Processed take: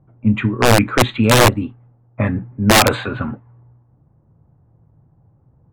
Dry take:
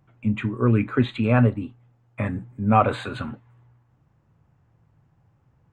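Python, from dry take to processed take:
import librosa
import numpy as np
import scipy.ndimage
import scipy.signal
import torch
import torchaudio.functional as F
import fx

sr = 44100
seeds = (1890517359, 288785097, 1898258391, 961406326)

y = (np.mod(10.0 ** (12.0 / 20.0) * x + 1.0, 2.0) - 1.0) / 10.0 ** (12.0 / 20.0)
y = fx.env_lowpass(y, sr, base_hz=710.0, full_db=-16.5)
y = F.gain(torch.from_numpy(y), 8.0).numpy()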